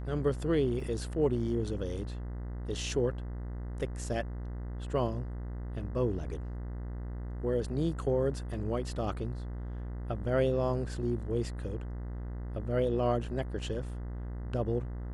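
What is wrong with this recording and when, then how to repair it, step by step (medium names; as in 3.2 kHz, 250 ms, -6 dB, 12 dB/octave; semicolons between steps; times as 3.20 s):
buzz 60 Hz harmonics 34 -38 dBFS
0.80 s: dropout 2.3 ms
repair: de-hum 60 Hz, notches 34; interpolate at 0.80 s, 2.3 ms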